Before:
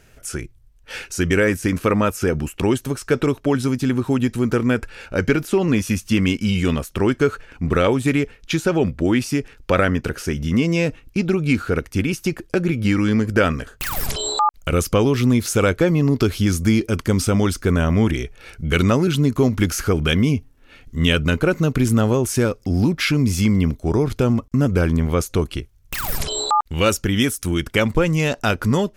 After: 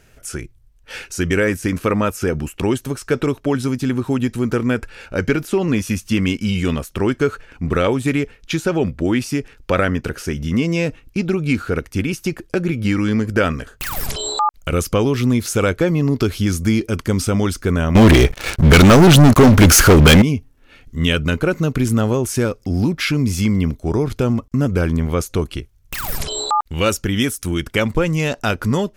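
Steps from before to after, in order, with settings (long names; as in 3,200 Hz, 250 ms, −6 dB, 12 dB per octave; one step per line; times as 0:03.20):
0:17.95–0:20.22: leveller curve on the samples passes 5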